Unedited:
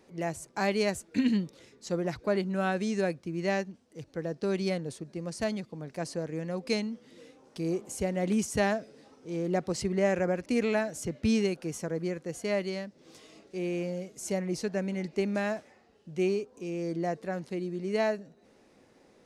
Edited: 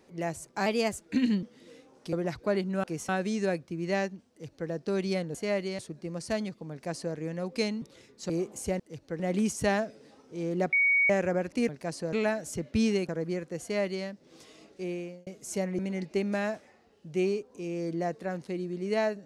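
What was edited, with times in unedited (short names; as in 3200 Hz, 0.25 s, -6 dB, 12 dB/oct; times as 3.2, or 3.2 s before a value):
0.66–0.95 speed 109%
1.45–1.93 swap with 6.93–7.63
3.85–4.25 copy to 8.13
5.82–6.26 copy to 10.62
9.66–10.03 bleep 2240 Hz -20.5 dBFS
11.58–11.83 move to 2.64
12.36–12.8 copy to 4.9
13.55–14.01 fade out
14.53–14.81 cut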